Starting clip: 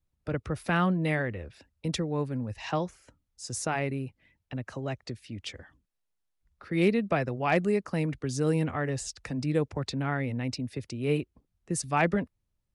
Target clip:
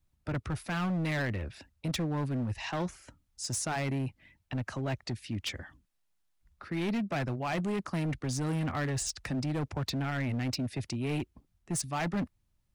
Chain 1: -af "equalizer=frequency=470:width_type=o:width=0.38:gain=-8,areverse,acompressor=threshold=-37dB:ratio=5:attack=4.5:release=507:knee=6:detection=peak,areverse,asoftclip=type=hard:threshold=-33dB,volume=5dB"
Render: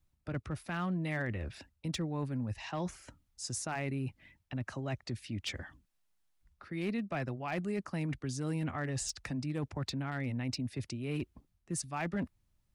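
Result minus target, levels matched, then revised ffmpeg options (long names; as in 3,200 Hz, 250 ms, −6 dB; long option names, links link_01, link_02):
downward compressor: peak gain reduction +6.5 dB
-af "equalizer=frequency=470:width_type=o:width=0.38:gain=-8,areverse,acompressor=threshold=-29dB:ratio=5:attack=4.5:release=507:knee=6:detection=peak,areverse,asoftclip=type=hard:threshold=-33dB,volume=5dB"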